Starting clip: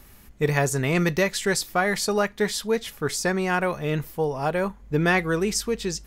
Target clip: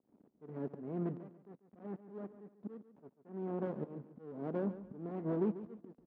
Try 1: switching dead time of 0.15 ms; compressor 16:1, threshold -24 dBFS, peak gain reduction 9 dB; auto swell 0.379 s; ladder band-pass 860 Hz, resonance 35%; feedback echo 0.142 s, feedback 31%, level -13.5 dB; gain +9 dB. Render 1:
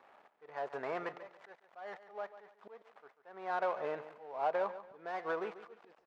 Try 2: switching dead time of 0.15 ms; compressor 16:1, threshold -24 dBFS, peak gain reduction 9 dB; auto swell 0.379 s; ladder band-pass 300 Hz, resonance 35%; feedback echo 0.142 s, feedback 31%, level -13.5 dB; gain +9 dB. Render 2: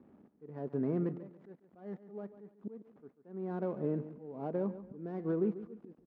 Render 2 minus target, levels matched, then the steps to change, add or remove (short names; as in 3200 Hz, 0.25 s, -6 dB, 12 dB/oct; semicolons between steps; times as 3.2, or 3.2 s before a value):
switching dead time: distortion -7 dB
change: switching dead time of 0.54 ms